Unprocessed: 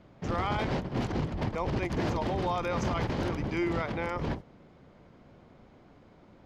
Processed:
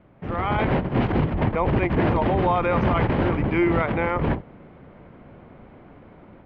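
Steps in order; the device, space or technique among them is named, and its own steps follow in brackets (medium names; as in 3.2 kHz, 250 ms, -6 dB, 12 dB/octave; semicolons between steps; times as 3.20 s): 0.83–1.35 s: treble shelf 6.5 kHz +8.5 dB; action camera in a waterproof case (low-pass 2.8 kHz 24 dB/octave; level rider gain up to 8 dB; trim +1.5 dB; AAC 96 kbps 44.1 kHz)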